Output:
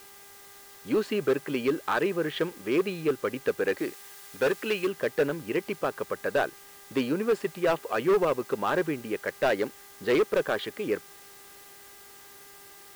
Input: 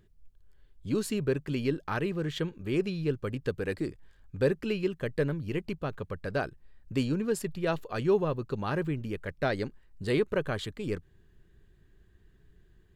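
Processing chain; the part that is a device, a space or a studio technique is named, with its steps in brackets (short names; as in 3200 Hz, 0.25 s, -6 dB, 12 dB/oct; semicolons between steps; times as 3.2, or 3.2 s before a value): aircraft radio (BPF 370–2600 Hz; hard clip -27 dBFS, distortion -11 dB; buzz 400 Hz, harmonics 5, -65 dBFS -1 dB/oct; white noise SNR 22 dB); 3.78–4.87 tilt shelf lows -3.5 dB; gain +8.5 dB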